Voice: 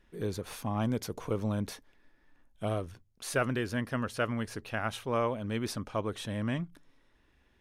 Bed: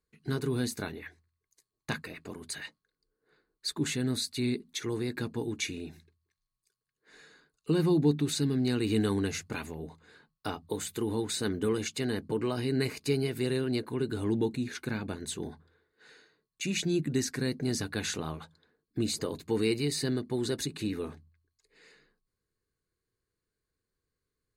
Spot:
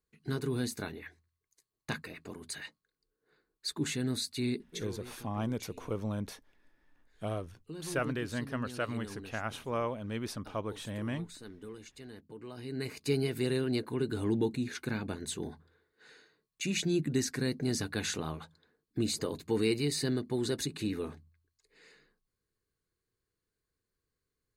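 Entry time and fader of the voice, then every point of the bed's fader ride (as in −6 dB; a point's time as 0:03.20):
4.60 s, −3.5 dB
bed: 0:04.66 −2.5 dB
0:05.09 −17 dB
0:12.36 −17 dB
0:13.14 −1 dB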